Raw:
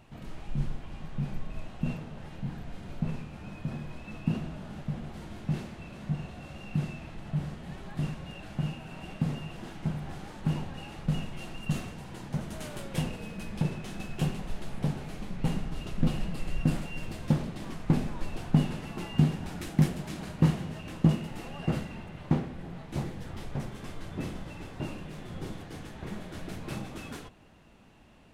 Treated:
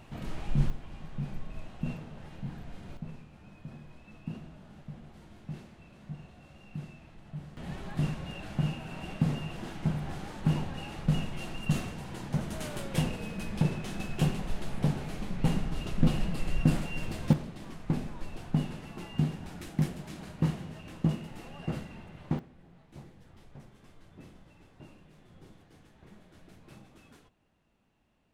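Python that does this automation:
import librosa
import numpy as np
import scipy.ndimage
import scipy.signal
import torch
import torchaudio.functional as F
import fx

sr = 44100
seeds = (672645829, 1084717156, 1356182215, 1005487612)

y = fx.gain(x, sr, db=fx.steps((0.0, 4.5), (0.7, -3.0), (2.97, -10.0), (7.57, 2.0), (17.33, -5.0), (22.39, -15.5)))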